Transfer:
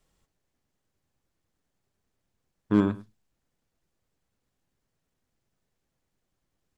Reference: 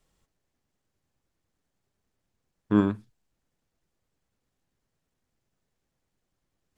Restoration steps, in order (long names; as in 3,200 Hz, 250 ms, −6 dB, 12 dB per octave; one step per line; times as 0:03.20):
clipped peaks rebuilt −11.5 dBFS
echo removal 103 ms −19.5 dB